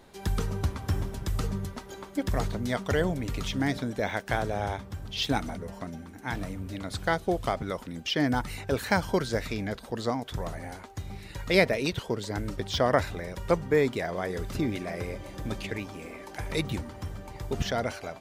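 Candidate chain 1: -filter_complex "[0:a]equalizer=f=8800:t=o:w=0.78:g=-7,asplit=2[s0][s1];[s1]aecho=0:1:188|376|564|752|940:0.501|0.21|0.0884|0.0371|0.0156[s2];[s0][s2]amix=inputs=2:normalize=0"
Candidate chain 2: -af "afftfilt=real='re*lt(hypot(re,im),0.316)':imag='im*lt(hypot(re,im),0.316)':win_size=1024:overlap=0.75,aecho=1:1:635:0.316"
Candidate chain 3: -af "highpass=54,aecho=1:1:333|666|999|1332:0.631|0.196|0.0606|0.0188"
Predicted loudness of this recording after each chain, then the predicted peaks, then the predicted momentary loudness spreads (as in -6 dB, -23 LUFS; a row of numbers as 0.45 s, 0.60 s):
-29.5 LUFS, -33.0 LUFS, -29.0 LUFS; -7.0 dBFS, -12.0 dBFS, -6.5 dBFS; 12 LU, 8 LU, 11 LU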